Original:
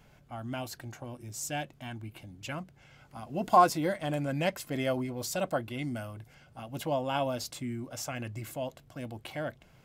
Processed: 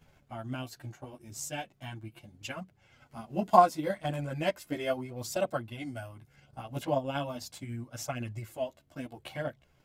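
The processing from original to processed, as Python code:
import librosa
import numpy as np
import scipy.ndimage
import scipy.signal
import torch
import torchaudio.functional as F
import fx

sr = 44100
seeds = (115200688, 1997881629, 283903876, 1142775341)

y = fx.chorus_voices(x, sr, voices=2, hz=0.37, base_ms=12, depth_ms=3.6, mix_pct=55)
y = fx.transient(y, sr, attack_db=5, sustain_db=-5)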